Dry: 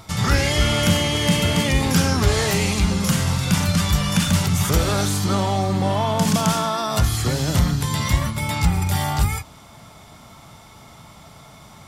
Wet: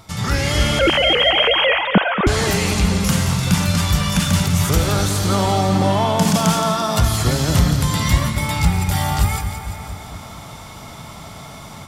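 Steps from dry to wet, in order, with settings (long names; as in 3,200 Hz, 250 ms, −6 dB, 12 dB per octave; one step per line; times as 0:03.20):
0:00.79–0:02.27: three sine waves on the formant tracks
echo with a time of its own for lows and highs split 2,200 Hz, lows 229 ms, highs 171 ms, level −9 dB
automatic gain control gain up to 10 dB
level −2 dB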